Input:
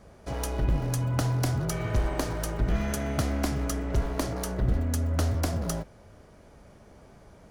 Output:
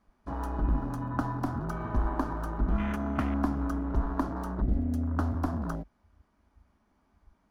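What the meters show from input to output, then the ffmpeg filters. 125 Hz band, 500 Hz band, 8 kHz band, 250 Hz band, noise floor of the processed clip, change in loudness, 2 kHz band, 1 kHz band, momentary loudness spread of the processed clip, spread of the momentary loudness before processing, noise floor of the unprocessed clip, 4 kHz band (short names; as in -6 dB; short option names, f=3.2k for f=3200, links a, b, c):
-5.0 dB, -6.0 dB, under -20 dB, +1.0 dB, -71 dBFS, -2.5 dB, -4.0 dB, +1.5 dB, 5 LU, 5 LU, -53 dBFS, under -15 dB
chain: -af "equalizer=f=125:t=o:w=1:g=-11,equalizer=f=250:t=o:w=1:g=8,equalizer=f=500:t=o:w=1:g=-12,equalizer=f=1k:t=o:w=1:g=7,equalizer=f=8k:t=o:w=1:g=-6,afwtdn=0.0178"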